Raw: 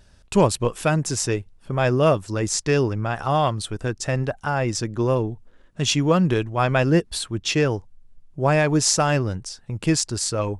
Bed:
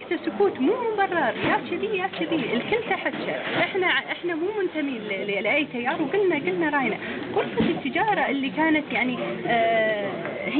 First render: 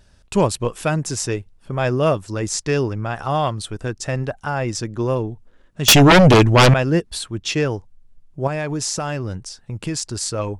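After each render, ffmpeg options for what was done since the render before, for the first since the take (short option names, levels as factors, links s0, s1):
-filter_complex "[0:a]asettb=1/sr,asplit=3[s0][s1][s2];[s0]atrim=end=5.884[s3];[s1]atrim=start=5.88:end=6.74,asetpts=PTS-STARTPTS,afade=t=in:d=0.004:c=qsin,afade=t=out:st=0.856:d=0.004:c=qsin,aeval=exprs='0.501*sin(PI/2*4.47*val(0)/0.501)':c=same[s4];[s2]atrim=start=6.736[s5];[s3][s4]acrossfade=d=0.004:c1=hsin:c2=qsin[s6];[s6][s5]acrossfade=d=0.004:c1=qsin:c2=hsin,asettb=1/sr,asplit=3[s7][s8][s9];[s7]atrim=end=8.474[s10];[s8]atrim=start=8.47:end=10.17,asetpts=PTS-STARTPTS,afade=t=in:d=0.004:c=qsin,afade=t=out:st=1.696:d=0.004:c=qsin,acompressor=threshold=0.1:ratio=6:attack=3.2:release=140:knee=1:detection=peak[s11];[s9]atrim=start=10.166[s12];[s10][s11]acrossfade=d=0.004:c1=hsin:c2=qsin[s13];[s13][s12]acrossfade=d=0.004:c1=qsin:c2=hsin"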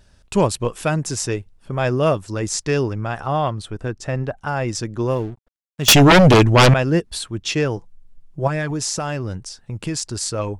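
-filter_complex "[0:a]asettb=1/sr,asplit=3[s0][s1][s2];[s0]atrim=end=3.204[s3];[s1]atrim=start=3.2:end=4.47,asetpts=PTS-STARTPTS,afade=t=in:d=0.004:c=qsin,afade=t=out:st=1.266:d=0.004:c=qsin,highshelf=f=3500:g=-9[s4];[s2]atrim=start=4.466[s5];[s3][s4]acrossfade=d=0.004:c1=hsin:c2=qsin[s6];[s6][s5]acrossfade=d=0.004:c1=qsin:c2=hsin,asettb=1/sr,asplit=3[s7][s8][s9];[s7]atrim=end=5.114[s10];[s8]atrim=start=5.11:end=6.42,asetpts=PTS-STARTPTS,afade=t=in:d=0.004:c=qsin,afade=t=out:st=1.306:d=0.004:c=qsin,aeval=exprs='sgn(val(0))*max(abs(val(0))-0.00841,0)':c=same[s11];[s9]atrim=start=6.416[s12];[s10][s11]acrossfade=d=0.004:c1=hsin:c2=qsin[s13];[s13][s12]acrossfade=d=0.004:c1=qsin:c2=hsin,asettb=1/sr,asplit=3[s14][s15][s16];[s14]atrim=end=7.764[s17];[s15]atrim=start=7.76:end=8.71,asetpts=PTS-STARTPTS,afade=t=in:d=0.004:c=qsin,afade=t=out:st=0.946:d=0.004:c=qsin,aecho=1:1:6:0.55,atrim=end_sample=41895[s18];[s16]atrim=start=8.706[s19];[s17][s18]acrossfade=d=0.004:c1=hsin:c2=qsin[s20];[s20][s19]acrossfade=d=0.004:c1=qsin:c2=hsin"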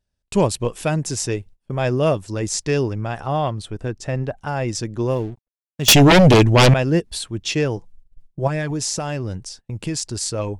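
-af "agate=range=0.0631:threshold=0.01:ratio=16:detection=peak,equalizer=f=1300:w=1.8:g=-5"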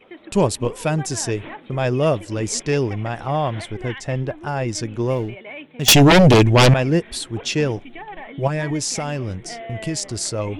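-filter_complex "[1:a]volume=0.211[s0];[0:a][s0]amix=inputs=2:normalize=0"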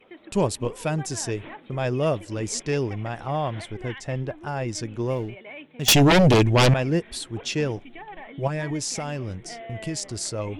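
-af "volume=0.562"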